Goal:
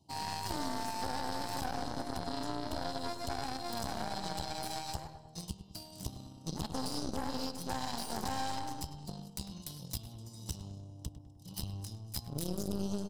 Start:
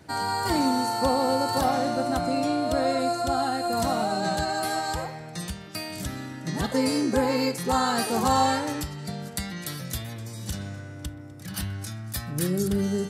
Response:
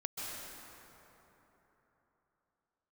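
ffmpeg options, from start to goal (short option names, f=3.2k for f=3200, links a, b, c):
-filter_complex "[0:a]aeval=exprs='clip(val(0),-1,0.0335)':c=same,asuperstop=centerf=1700:order=8:qfactor=0.9,aecho=1:1:1:0.55,aeval=exprs='0.316*(cos(1*acos(clip(val(0)/0.316,-1,1)))-cos(1*PI/2))+0.0282*(cos(3*acos(clip(val(0)/0.316,-1,1)))-cos(3*PI/2))+0.0282*(cos(7*acos(clip(val(0)/0.316,-1,1)))-cos(7*PI/2))':c=same,equalizer=f=5.2k:t=o:w=0.28:g=6,asplit=2[a][b];[b]adelay=101,lowpass=f=2.3k:p=1,volume=-11.5dB,asplit=2[c][d];[d]adelay=101,lowpass=f=2.3k:p=1,volume=0.53,asplit=2[e][f];[f]adelay=101,lowpass=f=2.3k:p=1,volume=0.53,asplit=2[g][h];[h]adelay=101,lowpass=f=2.3k:p=1,volume=0.53,asplit=2[i][j];[j]adelay=101,lowpass=f=2.3k:p=1,volume=0.53,asplit=2[k][l];[l]adelay=101,lowpass=f=2.3k:p=1,volume=0.53[m];[c][e][g][i][k][m]amix=inputs=6:normalize=0[n];[a][n]amix=inputs=2:normalize=0,alimiter=limit=-19.5dB:level=0:latency=1:release=49,acompressor=threshold=-36dB:ratio=2,volume=1.5dB"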